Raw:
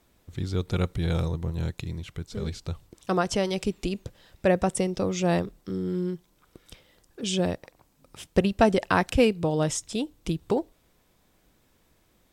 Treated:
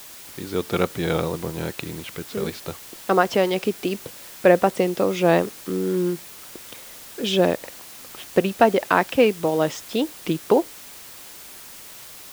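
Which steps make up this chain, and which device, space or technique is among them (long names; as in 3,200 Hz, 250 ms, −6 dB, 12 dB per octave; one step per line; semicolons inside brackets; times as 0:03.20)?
dictaphone (band-pass filter 270–3,200 Hz; automatic gain control gain up to 10 dB; tape wow and flutter; white noise bed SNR 18 dB)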